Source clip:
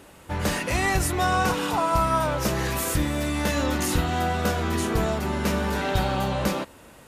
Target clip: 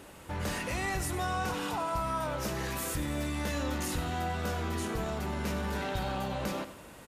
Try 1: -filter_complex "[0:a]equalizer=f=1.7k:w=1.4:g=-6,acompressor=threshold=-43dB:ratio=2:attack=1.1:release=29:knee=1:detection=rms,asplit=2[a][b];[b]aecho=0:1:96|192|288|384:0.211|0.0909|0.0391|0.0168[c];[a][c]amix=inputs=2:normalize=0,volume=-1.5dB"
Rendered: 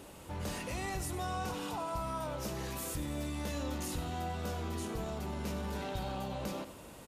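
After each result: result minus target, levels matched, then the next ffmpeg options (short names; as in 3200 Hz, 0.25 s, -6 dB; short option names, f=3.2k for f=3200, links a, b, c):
compressor: peak gain reduction +4 dB; 2000 Hz band -3.5 dB
-filter_complex "[0:a]equalizer=f=1.7k:w=1.4:g=-6,acompressor=threshold=-34.5dB:ratio=2:attack=1.1:release=29:knee=1:detection=rms,asplit=2[a][b];[b]aecho=0:1:96|192|288|384:0.211|0.0909|0.0391|0.0168[c];[a][c]amix=inputs=2:normalize=0,volume=-1.5dB"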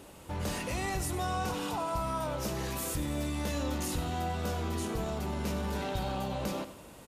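2000 Hz band -3.5 dB
-filter_complex "[0:a]acompressor=threshold=-34.5dB:ratio=2:attack=1.1:release=29:knee=1:detection=rms,asplit=2[a][b];[b]aecho=0:1:96|192|288|384:0.211|0.0909|0.0391|0.0168[c];[a][c]amix=inputs=2:normalize=0,volume=-1.5dB"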